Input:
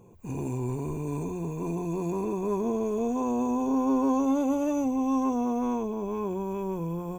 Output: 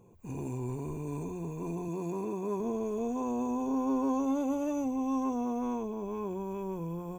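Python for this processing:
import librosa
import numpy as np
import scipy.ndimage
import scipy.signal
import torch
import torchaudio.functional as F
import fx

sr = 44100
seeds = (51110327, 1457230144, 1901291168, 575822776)

y = fx.highpass(x, sr, hz=110.0, slope=12, at=(1.88, 2.6))
y = y * 10.0 ** (-5.0 / 20.0)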